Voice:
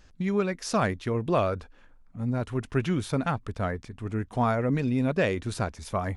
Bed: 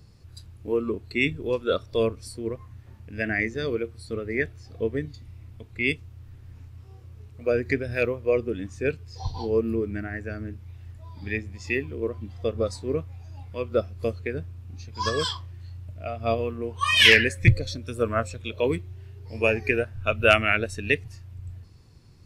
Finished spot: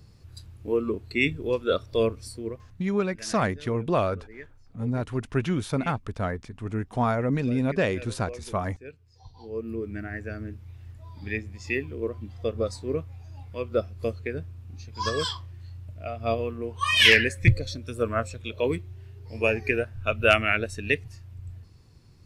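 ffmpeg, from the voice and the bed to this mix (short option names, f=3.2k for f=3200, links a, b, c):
-filter_complex "[0:a]adelay=2600,volume=0.5dB[a];[1:a]volume=16dB,afade=t=out:st=2.24:d=0.7:silence=0.133352,afade=t=in:st=9.37:d=0.76:silence=0.158489[b];[a][b]amix=inputs=2:normalize=0"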